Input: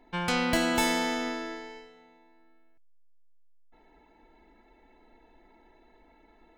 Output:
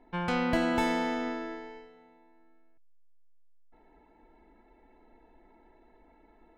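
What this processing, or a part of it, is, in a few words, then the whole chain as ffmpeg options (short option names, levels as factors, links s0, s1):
through cloth: -af "highshelf=f=3600:g=-17.5"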